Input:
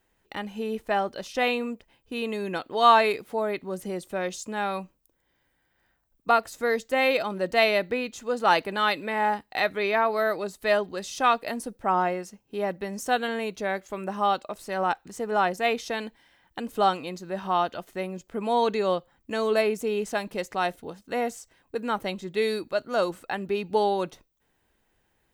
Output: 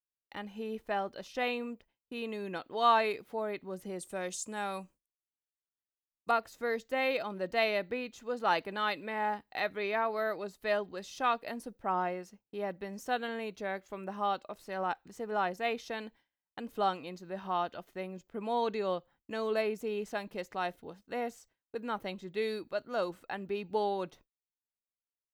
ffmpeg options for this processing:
ffmpeg -i in.wav -af "agate=range=-33dB:threshold=-45dB:ratio=3:detection=peak,asetnsamples=nb_out_samples=441:pad=0,asendcmd='3.99 equalizer g 11;6.31 equalizer g -7',equalizer=frequency=8700:width=1.1:gain=-5.5,volume=-8dB" out.wav

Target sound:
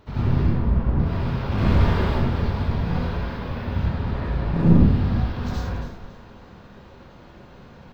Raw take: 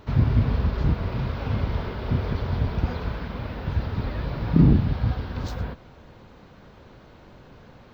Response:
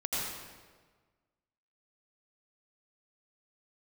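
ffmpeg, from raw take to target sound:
-filter_complex "[0:a]asettb=1/sr,asplit=3[link_01][link_02][link_03];[link_01]atrim=end=1.524[link_04];[link_02]atrim=start=1.52:end=2.1,asetpts=PTS-STARTPTS,afade=type=in:duration=0.004:curve=qsin,afade=type=out:start_time=0.576:duration=0.004:curve=qsin,acontrast=86[link_05];[link_03]atrim=start=2.096[link_06];[link_04][link_05]acrossfade=duration=0.004:curve1=hsin:curve2=qsin[link_07];[link_07][link_06]acrossfade=duration=0.004:curve1=qsin:curve2=hsin,asettb=1/sr,asplit=3[link_08][link_09][link_10];[link_08]atrim=end=3.794[link_11];[link_09]atrim=start=3.79:end=4.74,asetpts=PTS-STARTPTS,afade=type=in:duration=0.004:curve=qsin,afade=type=out:start_time=0.946:duration=0.004:curve=qsin,lowpass=frequency=3500:poles=1[link_12];[link_10]atrim=start=4.736[link_13];[link_11][link_12]acrossfade=duration=0.004:curve1=hsin:curve2=qsin[link_14];[link_14][link_13]acrossfade=duration=0.004:curve1=qsin:curve2=hsin,aeval=exprs='clip(val(0),-1,0.0631)':channel_layout=same,asplit=3[link_15][link_16][link_17];[link_15]afade=type=out:start_time=0.42:duration=0.02[link_18];[link_16]adynamicsmooth=sensitivity=1:basefreq=1400,afade=type=in:start_time=0.42:duration=0.02,afade=type=out:start_time=0.98:duration=0.02[link_19];[link_17]afade=type=in:start_time=0.98:duration=0.02[link_20];[link_18][link_19][link_20]amix=inputs=3:normalize=0,asplit=4[link_21][link_22][link_23][link_24];[link_22]adelay=277,afreqshift=-45,volume=-11.5dB[link_25];[link_23]adelay=554,afreqshift=-90,volume=-21.4dB[link_26];[link_24]adelay=831,afreqshift=-135,volume=-31.3dB[link_27];[link_21][link_25][link_26][link_27]amix=inputs=4:normalize=0[link_28];[1:a]atrim=start_sample=2205,afade=type=out:start_time=0.32:duration=0.01,atrim=end_sample=14553,asetrate=57330,aresample=44100[link_29];[link_28][link_29]afir=irnorm=-1:irlink=0,volume=-1dB"

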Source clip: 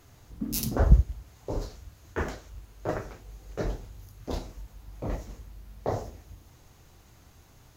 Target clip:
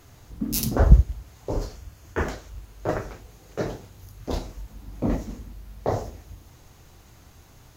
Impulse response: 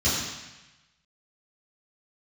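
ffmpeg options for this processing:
-filter_complex "[0:a]asettb=1/sr,asplit=3[link_01][link_02][link_03];[link_01]atrim=end=1.514[link_04];[link_02]atrim=start=1.51:end=2.24,asetpts=PTS-STARTPTS,afade=type=in:duration=0.004:curve=qsin,afade=type=out:start_time=0.726:duration=0.004:curve=qsin,bandreject=frequency=3900:width=9.4[link_05];[link_03]atrim=start=2.236[link_06];[link_04][link_05]acrossfade=duration=0.004:curve1=hsin:curve2=qsin[link_07];[link_07][link_06]acrossfade=duration=0.004:curve1=qsin:curve2=hsin,asettb=1/sr,asplit=3[link_08][link_09][link_10];[link_08]atrim=end=3.264[link_11];[link_09]atrim=start=3.26:end=4.03,asetpts=PTS-STARTPTS,afade=type=in:duration=0.004:curve=qsin,afade=type=out:start_time=0.766:duration=0.004:curve=qsin,highpass=100[link_12];[link_10]atrim=start=4.026[link_13];[link_11][link_12]acrossfade=duration=0.004:curve1=hsin:curve2=qsin[link_14];[link_14][link_13]acrossfade=duration=0.004:curve1=qsin:curve2=hsin,asettb=1/sr,asplit=3[link_15][link_16][link_17];[link_15]atrim=end=4.704[link_18];[link_16]atrim=start=4.7:end=5.53,asetpts=PTS-STARTPTS,afade=type=in:duration=0.004:curve=qsin,afade=type=out:start_time=0.826:duration=0.004:curve=qsin,equalizer=frequency=240:width_type=o:width=0.85:gain=11.5[link_19];[link_17]atrim=start=5.526[link_20];[link_18][link_19]acrossfade=duration=0.004:curve1=hsin:curve2=qsin[link_21];[link_21][link_20]acrossfade=duration=0.004:curve1=qsin:curve2=hsin,volume=4.5dB"

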